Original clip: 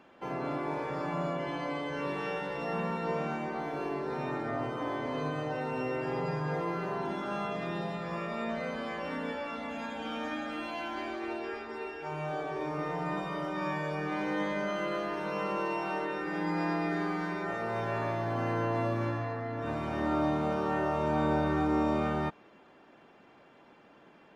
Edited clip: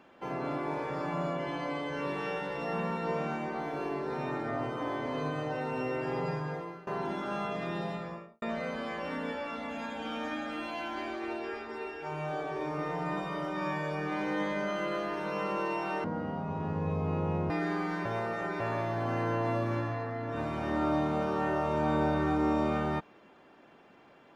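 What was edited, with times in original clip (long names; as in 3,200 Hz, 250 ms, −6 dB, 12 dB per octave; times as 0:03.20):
0:06.29–0:06.87: fade out, to −20.5 dB
0:07.90–0:08.42: fade out and dull
0:16.04–0:16.80: play speed 52%
0:17.35–0:17.90: reverse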